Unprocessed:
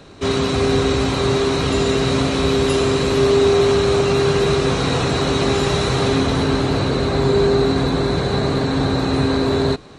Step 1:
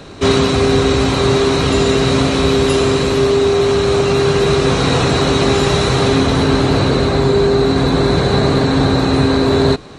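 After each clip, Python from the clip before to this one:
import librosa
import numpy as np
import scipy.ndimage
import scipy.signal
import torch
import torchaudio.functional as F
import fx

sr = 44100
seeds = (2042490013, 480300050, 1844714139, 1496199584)

y = fx.rider(x, sr, range_db=10, speed_s=0.5)
y = F.gain(torch.from_numpy(y), 4.0).numpy()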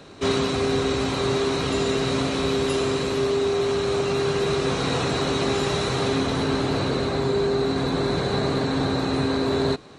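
y = fx.low_shelf(x, sr, hz=76.0, db=-10.5)
y = F.gain(torch.from_numpy(y), -9.0).numpy()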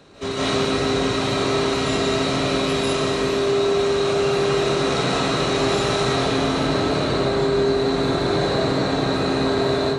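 y = fx.rev_freeverb(x, sr, rt60_s=0.8, hf_ratio=0.85, predelay_ms=115, drr_db=-8.0)
y = F.gain(torch.from_numpy(y), -4.5).numpy()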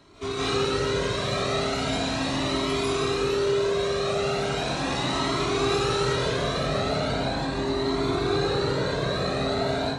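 y = fx.comb_cascade(x, sr, direction='rising', hz=0.38)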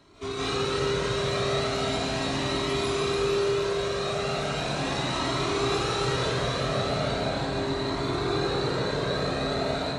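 y = fx.echo_feedback(x, sr, ms=293, feedback_pct=52, wet_db=-6)
y = F.gain(torch.from_numpy(y), -2.5).numpy()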